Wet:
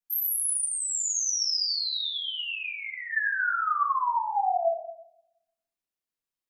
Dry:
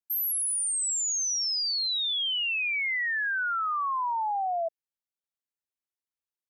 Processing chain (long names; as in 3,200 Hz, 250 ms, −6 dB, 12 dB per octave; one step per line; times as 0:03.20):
0:00.66–0:03.11: resonant band-pass 5,900 Hz, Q 1.2
rectangular room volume 220 cubic metres, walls mixed, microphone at 1.8 metres
level −3.5 dB